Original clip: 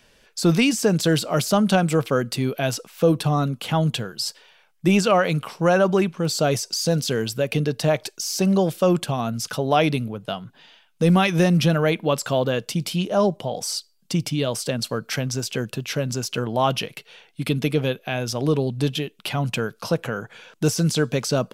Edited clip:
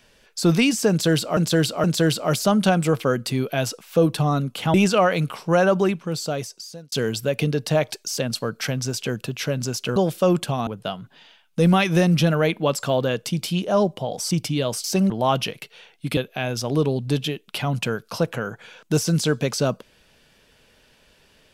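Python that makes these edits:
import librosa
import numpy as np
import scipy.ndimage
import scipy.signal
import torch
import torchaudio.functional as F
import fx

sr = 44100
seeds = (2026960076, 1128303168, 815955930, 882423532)

y = fx.edit(x, sr, fx.repeat(start_s=0.9, length_s=0.47, count=3),
    fx.cut(start_s=3.8, length_s=1.07),
    fx.fade_out_span(start_s=5.86, length_s=1.19),
    fx.swap(start_s=8.3, length_s=0.26, other_s=14.66, other_length_s=1.79),
    fx.cut(start_s=9.27, length_s=0.83),
    fx.cut(start_s=13.74, length_s=0.39),
    fx.cut(start_s=17.52, length_s=0.36), tone=tone)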